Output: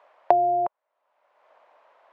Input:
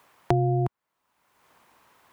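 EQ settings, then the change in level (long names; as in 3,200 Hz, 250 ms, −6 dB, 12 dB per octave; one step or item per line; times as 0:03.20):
high-pass with resonance 600 Hz, resonance Q 4.9
low-pass filter 2,800 Hz 12 dB per octave
dynamic equaliser 960 Hz, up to +6 dB, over −36 dBFS, Q 2
−2.0 dB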